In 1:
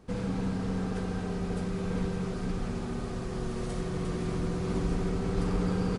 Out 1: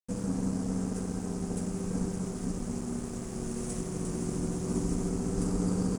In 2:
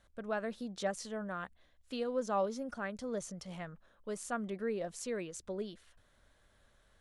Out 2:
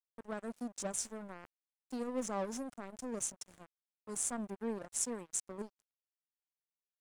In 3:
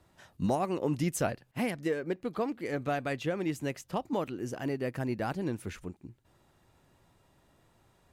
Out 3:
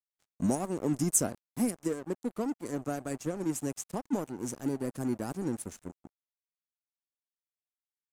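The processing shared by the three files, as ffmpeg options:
-filter_complex "[0:a]acrossover=split=570[s0][s1];[s1]aexciter=amount=11.6:drive=2.8:freq=5100[s2];[s0][s2]amix=inputs=2:normalize=0,equalizer=f=250:t=o:w=1:g=9,equalizer=f=2000:t=o:w=1:g=-6,equalizer=f=4000:t=o:w=1:g=-6,equalizer=f=8000:t=o:w=1:g=6,aeval=exprs='sgn(val(0))*max(abs(val(0))-0.015,0)':c=same,aemphasis=mode=reproduction:type=50kf,volume=0.708"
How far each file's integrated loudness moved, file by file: -0.5 LU, -0.5 LU, +0.5 LU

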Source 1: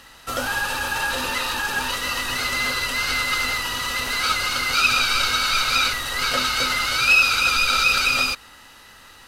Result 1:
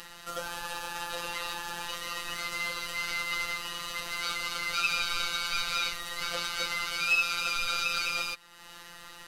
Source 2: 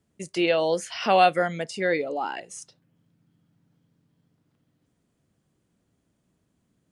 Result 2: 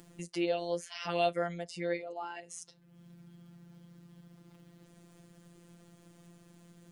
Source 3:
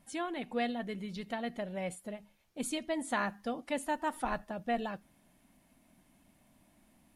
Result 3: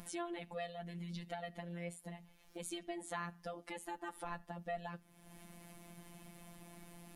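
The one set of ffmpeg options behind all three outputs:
-af "acompressor=mode=upward:threshold=0.0501:ratio=2.5,afftfilt=real='hypot(re,im)*cos(PI*b)':imag='0':win_size=1024:overlap=0.75,volume=0.422"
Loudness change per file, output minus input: -11.0 LU, -11.0 LU, -10.0 LU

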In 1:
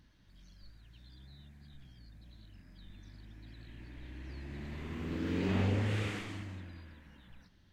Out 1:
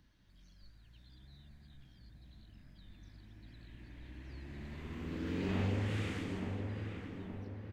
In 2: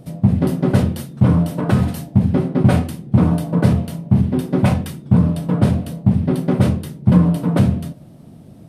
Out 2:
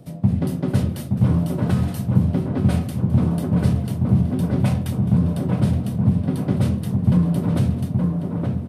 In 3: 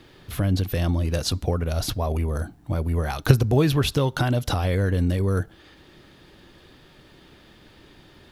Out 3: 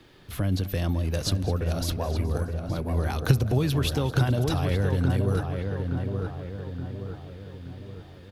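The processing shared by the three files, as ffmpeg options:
-filter_complex "[0:a]asplit=2[s0][s1];[s1]adelay=872,lowpass=f=1700:p=1,volume=0.562,asplit=2[s2][s3];[s3]adelay=872,lowpass=f=1700:p=1,volume=0.52,asplit=2[s4][s5];[s5]adelay=872,lowpass=f=1700:p=1,volume=0.52,asplit=2[s6][s7];[s7]adelay=872,lowpass=f=1700:p=1,volume=0.52,asplit=2[s8][s9];[s9]adelay=872,lowpass=f=1700:p=1,volume=0.52,asplit=2[s10][s11];[s11]adelay=872,lowpass=f=1700:p=1,volume=0.52,asplit=2[s12][s13];[s13]adelay=872,lowpass=f=1700:p=1,volume=0.52[s14];[s2][s4][s6][s8][s10][s12][s14]amix=inputs=7:normalize=0[s15];[s0][s15]amix=inputs=2:normalize=0,acrossover=split=210|3000[s16][s17][s18];[s17]acompressor=threshold=0.0794:ratio=6[s19];[s16][s19][s18]amix=inputs=3:normalize=0,asplit=2[s20][s21];[s21]aecho=0:1:212|424|636|848|1060:0.141|0.0805|0.0459|0.0262|0.0149[s22];[s20][s22]amix=inputs=2:normalize=0,volume=0.668"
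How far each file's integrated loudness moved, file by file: -3.0 LU, -3.5 LU, -3.5 LU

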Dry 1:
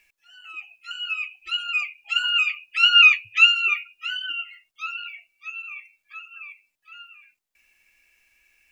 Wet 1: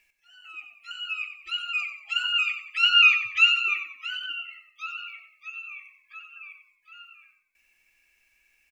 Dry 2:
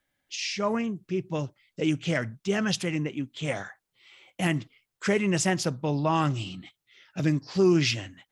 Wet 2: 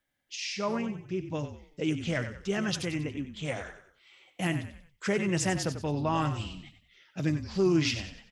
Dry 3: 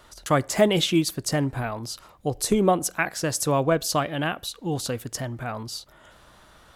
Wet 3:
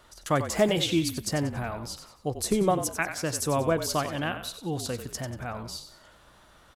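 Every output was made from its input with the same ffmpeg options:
-filter_complex "[0:a]asplit=5[s0][s1][s2][s3][s4];[s1]adelay=93,afreqshift=-40,volume=0.316[s5];[s2]adelay=186,afreqshift=-80,volume=0.123[s6];[s3]adelay=279,afreqshift=-120,volume=0.0479[s7];[s4]adelay=372,afreqshift=-160,volume=0.0188[s8];[s0][s5][s6][s7][s8]amix=inputs=5:normalize=0,volume=0.631"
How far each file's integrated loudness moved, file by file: -3.5 LU, -3.5 LU, -3.5 LU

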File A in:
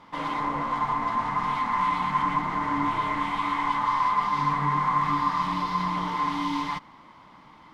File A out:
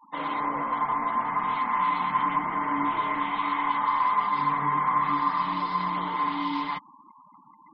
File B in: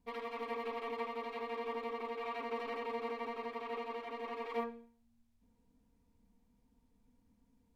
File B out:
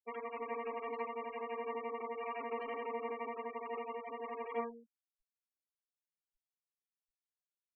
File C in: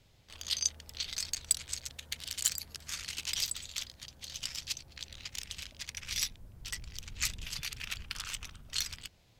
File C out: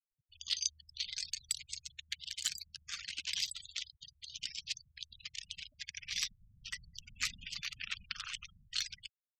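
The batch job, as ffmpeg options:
-filter_complex "[0:a]afftfilt=real='re*gte(hypot(re,im),0.00891)':imag='im*gte(hypot(re,im),0.00891)':win_size=1024:overlap=0.75,acrossover=split=190 6000:gain=0.224 1 0.2[s0][s1][s2];[s0][s1][s2]amix=inputs=3:normalize=0"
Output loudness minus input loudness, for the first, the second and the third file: 0.0 LU, -0.5 LU, -3.5 LU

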